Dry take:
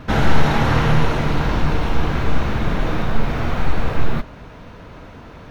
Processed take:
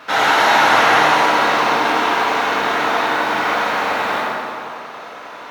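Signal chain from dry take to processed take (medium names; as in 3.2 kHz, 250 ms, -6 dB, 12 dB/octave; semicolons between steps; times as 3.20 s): high-pass 710 Hz 12 dB/octave; bucket-brigade echo 90 ms, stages 1024, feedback 77%, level -7 dB; plate-style reverb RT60 2 s, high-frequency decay 0.9×, DRR -4.5 dB; trim +4.5 dB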